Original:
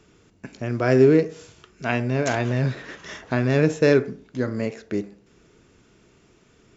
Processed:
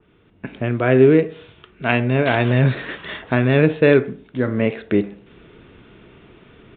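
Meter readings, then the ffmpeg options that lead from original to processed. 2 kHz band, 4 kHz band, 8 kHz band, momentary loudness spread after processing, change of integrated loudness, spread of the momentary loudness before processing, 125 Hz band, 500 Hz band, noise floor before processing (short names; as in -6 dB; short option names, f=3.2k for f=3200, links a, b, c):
+6.0 dB, +5.5 dB, n/a, 16 LU, +4.0 dB, 16 LU, +5.0 dB, +4.0 dB, -58 dBFS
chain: -af "aresample=8000,aresample=44100,dynaudnorm=f=260:g=3:m=11.5dB,adynamicequalizer=threshold=0.02:dfrequency=2400:dqfactor=0.7:tfrequency=2400:tqfactor=0.7:attack=5:release=100:ratio=0.375:range=2.5:mode=boostabove:tftype=highshelf,volume=-1dB"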